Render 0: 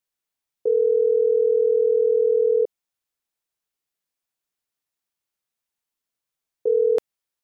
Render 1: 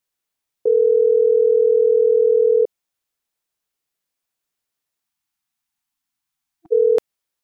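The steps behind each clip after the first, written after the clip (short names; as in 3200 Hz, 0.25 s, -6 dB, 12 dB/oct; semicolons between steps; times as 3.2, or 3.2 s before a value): spectral delete 5.05–6.72, 330–680 Hz; gain +4 dB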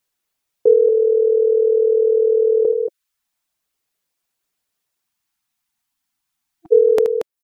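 reverb removal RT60 0.63 s; loudspeakers at several distances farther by 26 m -10 dB, 79 m -8 dB; gain +5 dB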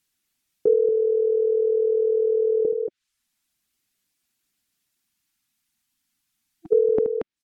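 graphic EQ 250/500/1000 Hz +6/-10/-6 dB; treble ducked by the level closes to 710 Hz, closed at -21.5 dBFS; gain +3 dB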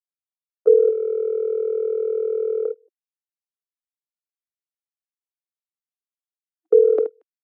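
gate -19 dBFS, range -37 dB; steep high-pass 340 Hz; gain +5.5 dB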